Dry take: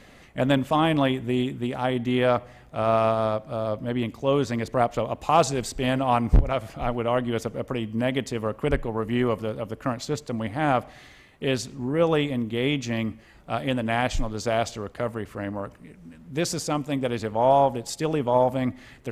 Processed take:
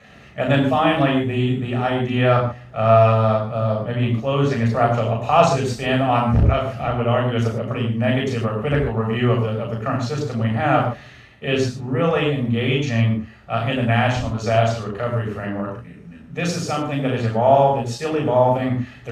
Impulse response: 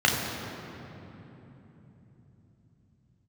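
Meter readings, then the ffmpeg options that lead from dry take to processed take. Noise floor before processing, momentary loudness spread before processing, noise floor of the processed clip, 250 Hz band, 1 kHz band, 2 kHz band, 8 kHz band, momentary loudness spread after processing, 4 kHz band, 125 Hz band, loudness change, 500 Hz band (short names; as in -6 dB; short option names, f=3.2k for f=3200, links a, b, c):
-50 dBFS, 9 LU, -43 dBFS, +4.5 dB, +5.0 dB, +6.0 dB, -1.0 dB, 9 LU, +4.0 dB, +10.0 dB, +5.5 dB, +5.0 dB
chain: -filter_complex "[1:a]atrim=start_sample=2205,atrim=end_sample=6174,asetrate=39249,aresample=44100[a];[0:a][a]afir=irnorm=-1:irlink=0,volume=-11.5dB"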